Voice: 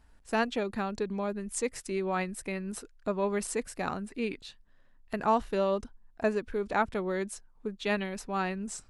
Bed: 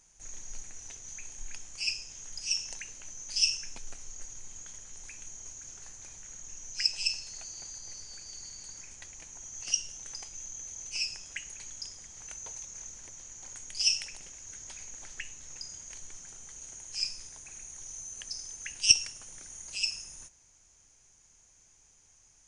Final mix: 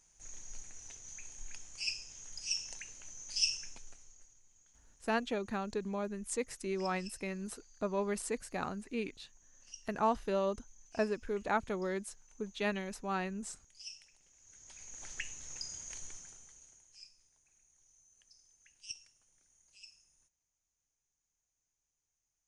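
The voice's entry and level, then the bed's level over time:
4.75 s, -4.5 dB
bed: 3.65 s -5 dB
4.42 s -21.5 dB
14.2 s -21.5 dB
15.09 s -0.5 dB
16.07 s -0.5 dB
17.11 s -24.5 dB

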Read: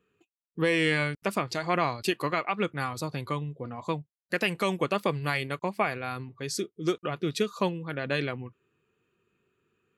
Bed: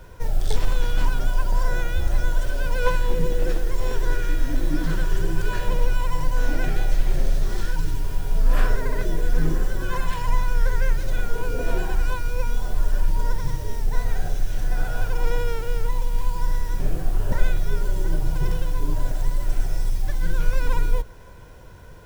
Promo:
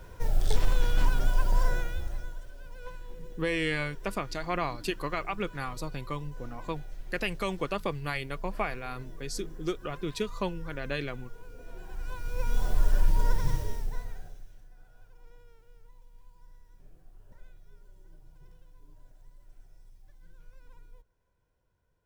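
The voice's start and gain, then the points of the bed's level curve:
2.80 s, -4.5 dB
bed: 1.65 s -3.5 dB
2.49 s -22 dB
11.72 s -22 dB
12.6 s -2.5 dB
13.57 s -2.5 dB
14.73 s -32 dB

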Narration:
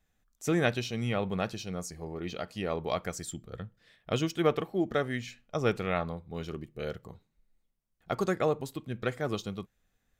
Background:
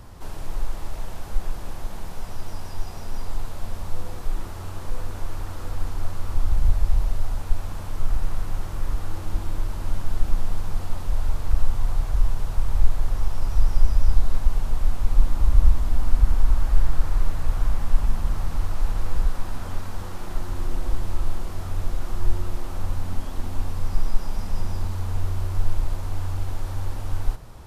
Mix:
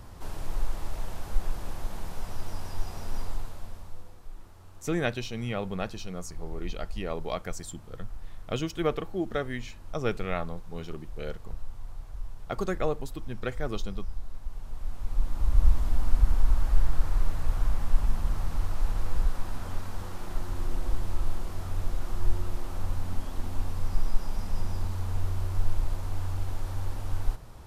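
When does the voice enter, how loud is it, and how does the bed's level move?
4.40 s, -1.5 dB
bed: 3.2 s -2.5 dB
4.17 s -17.5 dB
14.4 s -17.5 dB
15.72 s -4 dB

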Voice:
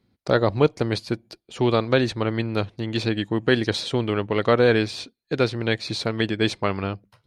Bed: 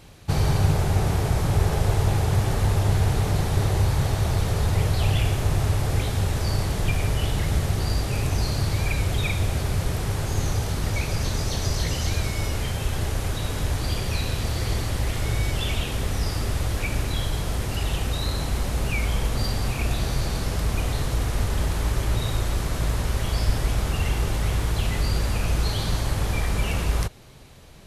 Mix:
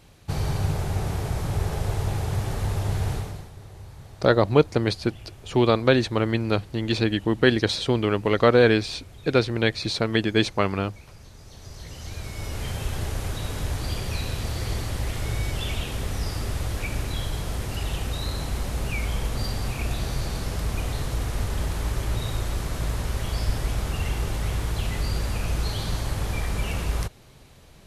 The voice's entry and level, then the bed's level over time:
3.95 s, +1.0 dB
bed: 3.14 s -5 dB
3.54 s -21.5 dB
11.37 s -21.5 dB
12.7 s -3 dB

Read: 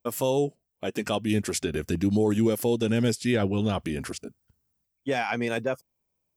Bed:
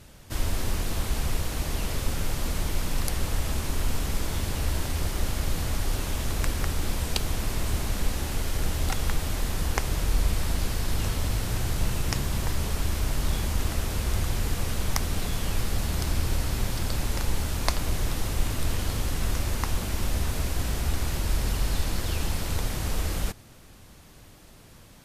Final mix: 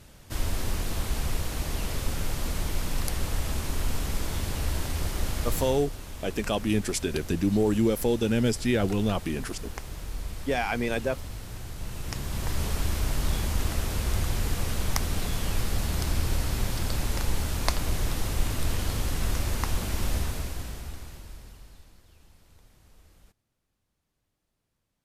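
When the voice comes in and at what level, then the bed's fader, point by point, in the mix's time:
5.40 s, -0.5 dB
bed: 5.58 s -1.5 dB
5.9 s -11 dB
11.76 s -11 dB
12.61 s -0.5 dB
20.15 s -0.5 dB
22.05 s -29 dB

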